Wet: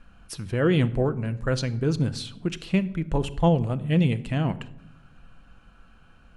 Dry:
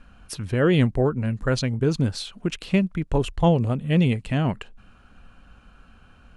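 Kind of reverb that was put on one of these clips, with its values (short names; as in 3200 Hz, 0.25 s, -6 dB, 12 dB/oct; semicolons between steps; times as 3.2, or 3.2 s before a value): shoebox room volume 2500 m³, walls furnished, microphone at 0.72 m; gain -3 dB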